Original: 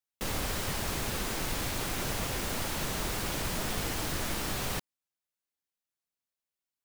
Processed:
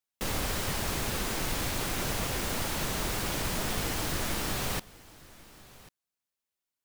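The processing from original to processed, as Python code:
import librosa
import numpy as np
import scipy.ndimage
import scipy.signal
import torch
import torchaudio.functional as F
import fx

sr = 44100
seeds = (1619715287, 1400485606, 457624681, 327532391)

y = x + 10.0 ** (-21.0 / 20.0) * np.pad(x, (int(1093 * sr / 1000.0), 0))[:len(x)]
y = y * librosa.db_to_amplitude(1.5)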